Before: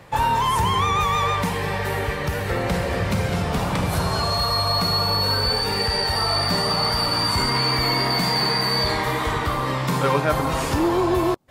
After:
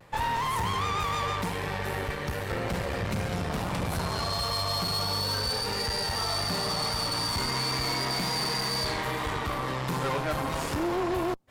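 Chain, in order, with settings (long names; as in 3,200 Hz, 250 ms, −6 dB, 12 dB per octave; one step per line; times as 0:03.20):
tube saturation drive 22 dB, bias 0.8
pitch vibrato 0.39 Hz 21 cents
level −2.5 dB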